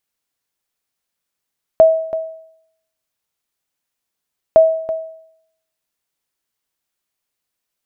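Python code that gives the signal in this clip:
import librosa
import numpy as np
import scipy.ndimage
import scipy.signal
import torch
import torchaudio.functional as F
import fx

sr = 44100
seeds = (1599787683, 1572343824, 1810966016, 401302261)

y = fx.sonar_ping(sr, hz=645.0, decay_s=0.71, every_s=2.76, pings=2, echo_s=0.33, echo_db=-14.0, level_db=-2.0)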